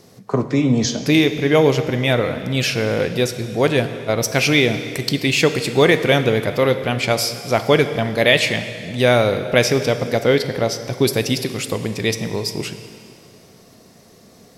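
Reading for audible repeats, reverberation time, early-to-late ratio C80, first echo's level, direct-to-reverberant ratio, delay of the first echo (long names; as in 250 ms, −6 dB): no echo audible, 2.5 s, 11.0 dB, no echo audible, 9.0 dB, no echo audible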